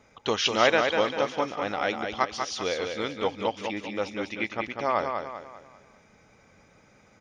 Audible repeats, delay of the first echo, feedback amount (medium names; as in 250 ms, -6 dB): 4, 196 ms, 41%